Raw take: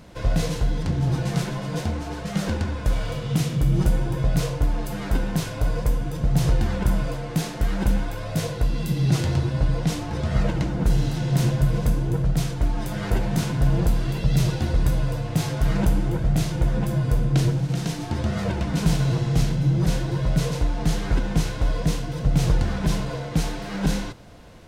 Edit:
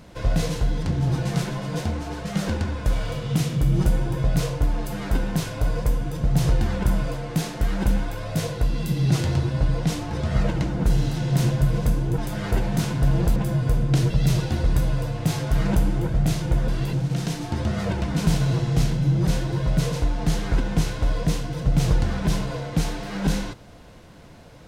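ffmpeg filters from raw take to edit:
-filter_complex "[0:a]asplit=6[a][b][c][d][e][f];[a]atrim=end=12.182[g];[b]atrim=start=12.768:end=13.952[h];[c]atrim=start=16.778:end=17.522[i];[d]atrim=start=14.198:end=16.782[j];[e]atrim=start=13.948:end=14.202[k];[f]atrim=start=17.518[l];[g][h]acrossfade=d=0.004:c1=hsin:c2=hsin[m];[m][i]acrossfade=d=0.004:c1=hsin:c2=hsin[n];[n][j]acrossfade=d=0.004:c1=hsin:c2=hsin[o];[o][k]acrossfade=d=0.004:c1=hsin:c2=hsin[p];[p][l]acrossfade=d=0.004:c1=hsin:c2=hsin"

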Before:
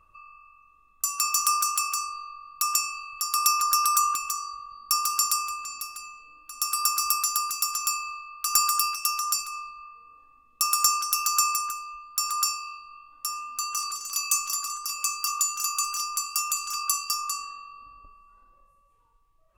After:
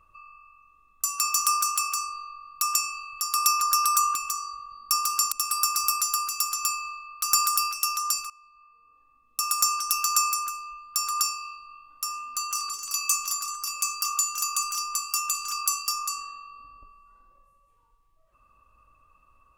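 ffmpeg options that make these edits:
-filter_complex "[0:a]asplit=3[a][b][c];[a]atrim=end=5.322[d];[b]atrim=start=6.538:end=9.52,asetpts=PTS-STARTPTS,afade=t=out:st=2.978:d=0.004:c=hsin:silence=0.0891251[e];[c]atrim=start=9.52,asetpts=PTS-STARTPTS,afade=t=in:d=1.61:silence=0.0891251[f];[e][f]concat=n=2:v=0:a=1[g];[d][g]acrossfade=d=0.004:c1=hsin:c2=hsin"

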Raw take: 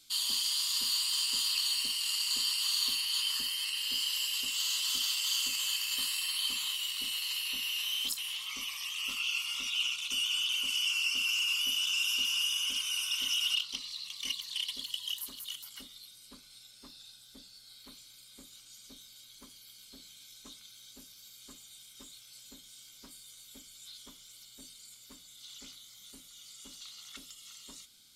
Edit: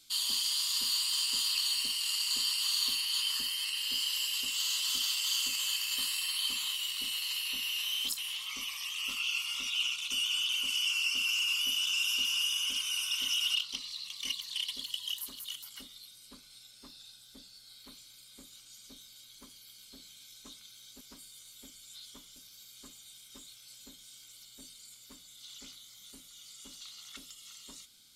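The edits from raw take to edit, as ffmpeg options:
-filter_complex "[0:a]asplit=4[a][b][c][d];[a]atrim=end=21.012[e];[b]atrim=start=22.928:end=24.282[f];[c]atrim=start=21.008:end=22.932[g];[d]atrim=start=24.278[h];[e][f]acrossfade=d=0.004:c1=hsin:c2=hsin[i];[i][g]acrossfade=d=0.004:c1=hsin:c2=hsin[j];[j][h]acrossfade=d=0.004:c1=hsin:c2=hsin"

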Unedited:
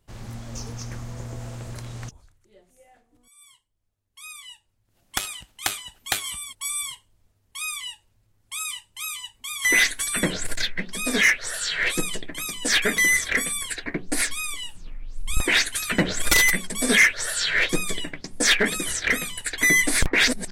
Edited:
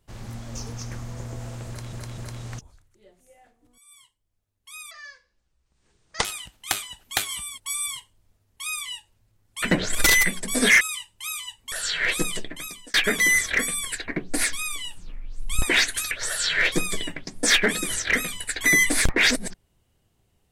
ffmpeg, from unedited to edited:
-filter_complex "[0:a]asplit=10[a][b][c][d][e][f][g][h][i][j];[a]atrim=end=1.932[k];[b]atrim=start=1.678:end=1.932[l];[c]atrim=start=1.678:end=4.414[m];[d]atrim=start=4.41:end=5.2,asetpts=PTS-STARTPTS,asetrate=26019,aresample=44100,atrim=end_sample=59049,asetpts=PTS-STARTPTS[n];[e]atrim=start=5.196:end=8.572[o];[f]atrim=start=15.888:end=17.082[p];[g]atrim=start=8.568:end=9.482[q];[h]atrim=start=11.498:end=12.72,asetpts=PTS-STARTPTS,afade=t=out:st=0.732:d=0.49[r];[i]atrim=start=12.72:end=15.892,asetpts=PTS-STARTPTS,afade=t=in:d=0.004:c=hsin[s];[j]atrim=start=17.078[t];[k][l]acrossfade=d=0.004:c1=hsin:c2=hsin[u];[u][m]acrossfade=d=0.004:c1=hsin:c2=hsin[v];[v][n]acrossfade=d=0.004:c1=hsin:c2=hsin[w];[w][o]acrossfade=d=0.004:c1=hsin:c2=hsin[x];[x][p]acrossfade=d=0.004:c1=hsin:c2=hsin[y];[y][q]acrossfade=d=0.004:c1=hsin:c2=hsin[z];[r][s]concat=n=2:v=0:a=1[aa];[z][aa]acrossfade=d=0.004:c1=hsin:c2=hsin[ab];[ab][t]acrossfade=d=0.004:c1=hsin:c2=hsin"

